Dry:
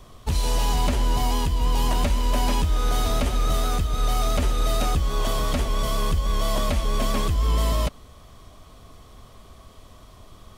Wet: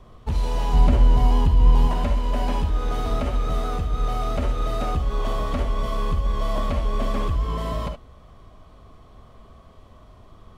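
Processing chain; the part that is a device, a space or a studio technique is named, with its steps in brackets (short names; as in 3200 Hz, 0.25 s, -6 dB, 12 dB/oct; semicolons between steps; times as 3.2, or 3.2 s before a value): 0.73–1.87 low shelf 330 Hz +7 dB; through cloth (high shelf 3700 Hz -16.5 dB); non-linear reverb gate 90 ms rising, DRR 6 dB; gain -1 dB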